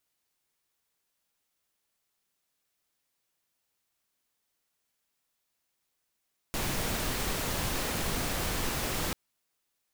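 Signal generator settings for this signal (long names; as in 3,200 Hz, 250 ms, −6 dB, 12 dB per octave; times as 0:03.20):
noise pink, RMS −31.5 dBFS 2.59 s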